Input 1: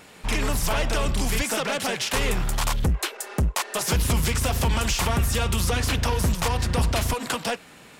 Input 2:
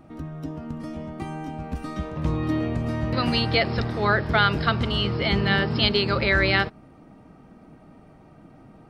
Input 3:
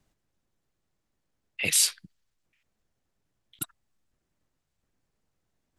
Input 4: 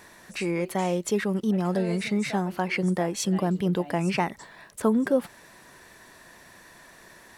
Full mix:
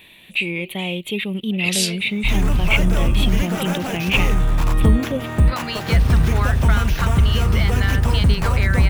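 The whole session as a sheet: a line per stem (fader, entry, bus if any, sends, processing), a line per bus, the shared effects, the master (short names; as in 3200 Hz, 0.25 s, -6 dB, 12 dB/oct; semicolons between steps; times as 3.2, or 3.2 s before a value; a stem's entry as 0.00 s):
-1.5 dB, 2.00 s, no send, tone controls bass +10 dB, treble -12 dB; sample-rate reducer 8700 Hz, jitter 0%
-1.5 dB, 2.35 s, no send, bell 1600 Hz +9 dB 2 oct; compressor, threshold -22 dBFS, peak gain reduction 13.5 dB
-4.0 dB, 0.00 s, no send, bell 3000 Hz +12 dB 1.8 oct
+2.5 dB, 0.00 s, no send, EQ curve 180 Hz 0 dB, 1600 Hz -12 dB, 2500 Hz +14 dB, 3600 Hz +12 dB, 5300 Hz -21 dB, 12000 Hz +2 dB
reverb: off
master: dry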